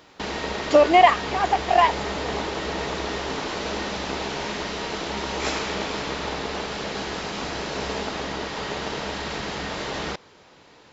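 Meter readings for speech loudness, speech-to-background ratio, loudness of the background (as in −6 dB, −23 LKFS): −18.5 LKFS, 10.5 dB, −29.0 LKFS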